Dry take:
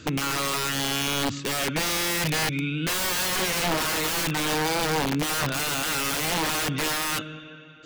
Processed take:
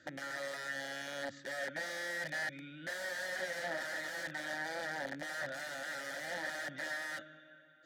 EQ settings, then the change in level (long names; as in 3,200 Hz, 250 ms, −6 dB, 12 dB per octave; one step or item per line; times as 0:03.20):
formant filter e
parametric band 150 Hz −5 dB 2.7 octaves
phaser with its sweep stopped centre 1,100 Hz, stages 4
+8.0 dB